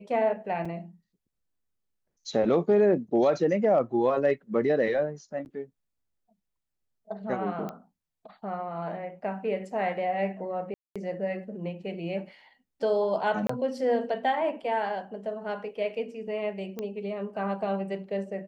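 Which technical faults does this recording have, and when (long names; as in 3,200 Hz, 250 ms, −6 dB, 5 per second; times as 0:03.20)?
0:00.65: drop-out 4.5 ms
0:05.45–0:05.46: drop-out 9.8 ms
0:07.69: click −23 dBFS
0:10.74–0:10.96: drop-out 216 ms
0:13.47–0:13.49: drop-out 24 ms
0:16.79: click −21 dBFS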